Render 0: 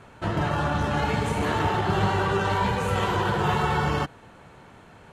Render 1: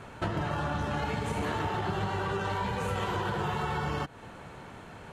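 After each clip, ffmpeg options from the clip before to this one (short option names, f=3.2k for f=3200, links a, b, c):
-af "acompressor=threshold=-31dB:ratio=10,volume=3dB"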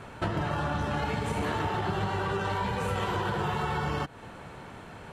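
-af "bandreject=f=6.6k:w=22,volume=1.5dB"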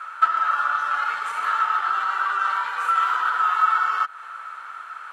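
-af "highpass=f=1.3k:t=q:w=14"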